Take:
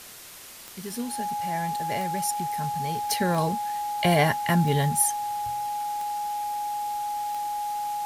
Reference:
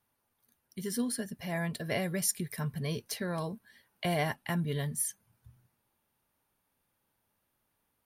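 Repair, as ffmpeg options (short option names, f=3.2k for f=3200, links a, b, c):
-af "adeclick=t=4,bandreject=f=830:w=30,afwtdn=0.0071,asetnsamples=n=441:p=0,asendcmd='3.03 volume volume -9.5dB',volume=0dB"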